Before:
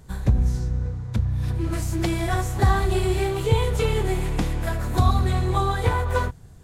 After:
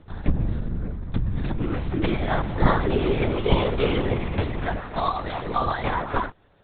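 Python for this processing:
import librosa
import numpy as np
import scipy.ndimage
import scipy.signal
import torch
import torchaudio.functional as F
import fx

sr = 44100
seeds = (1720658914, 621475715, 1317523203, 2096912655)

y = fx.highpass(x, sr, hz=fx.steps((0.0, 81.0), (4.79, 360.0)), slope=12)
y = fx.lpc_vocoder(y, sr, seeds[0], excitation='whisper', order=10)
y = fx.doppler_dist(y, sr, depth_ms=0.21)
y = y * 10.0 ** (1.5 / 20.0)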